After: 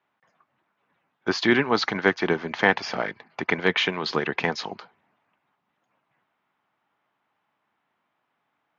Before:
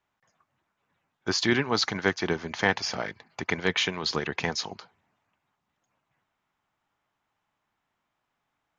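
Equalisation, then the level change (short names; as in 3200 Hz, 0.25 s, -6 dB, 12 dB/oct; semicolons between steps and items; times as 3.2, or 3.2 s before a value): BPF 170–3200 Hz; +5.0 dB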